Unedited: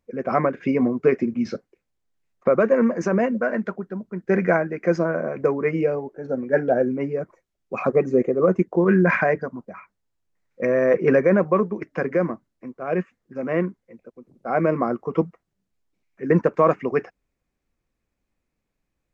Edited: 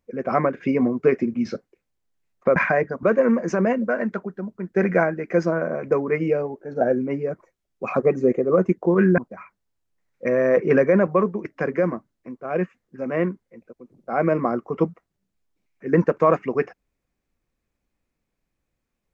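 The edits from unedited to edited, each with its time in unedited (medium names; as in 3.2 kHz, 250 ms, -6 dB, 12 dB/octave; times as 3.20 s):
6.34–6.71 s: delete
9.08–9.55 s: move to 2.56 s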